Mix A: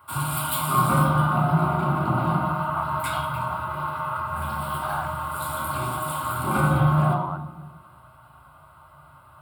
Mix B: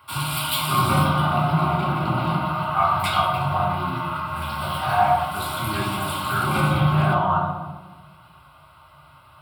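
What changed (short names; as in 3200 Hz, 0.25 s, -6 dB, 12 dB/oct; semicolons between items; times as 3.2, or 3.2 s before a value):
speech: send on; master: add band shelf 3500 Hz +9.5 dB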